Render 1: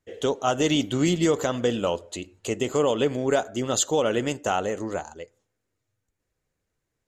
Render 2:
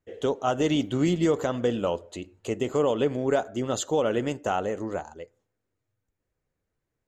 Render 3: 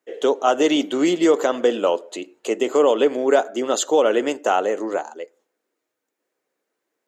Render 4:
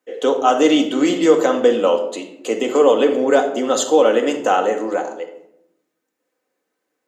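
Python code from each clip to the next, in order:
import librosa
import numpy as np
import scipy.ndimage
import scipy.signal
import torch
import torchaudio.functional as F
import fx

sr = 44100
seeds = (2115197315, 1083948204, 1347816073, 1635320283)

y1 = fx.high_shelf(x, sr, hz=2700.0, db=-9.0)
y1 = y1 * librosa.db_to_amplitude(-1.0)
y2 = scipy.signal.sosfilt(scipy.signal.butter(4, 290.0, 'highpass', fs=sr, output='sos'), y1)
y2 = y2 * librosa.db_to_amplitude(8.0)
y3 = fx.room_shoebox(y2, sr, seeds[0], volume_m3=1900.0, walls='furnished', distance_m=2.0)
y3 = y3 * librosa.db_to_amplitude(1.0)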